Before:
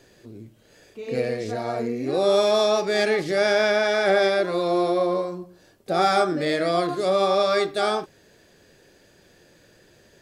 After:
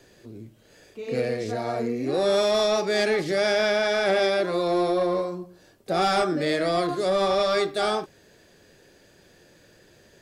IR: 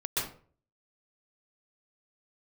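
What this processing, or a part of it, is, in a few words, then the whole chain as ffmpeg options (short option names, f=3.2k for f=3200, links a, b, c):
one-band saturation: -filter_complex "[0:a]acrossover=split=280|3000[a][b][c];[b]asoftclip=type=tanh:threshold=-17.5dB[d];[a][d][c]amix=inputs=3:normalize=0"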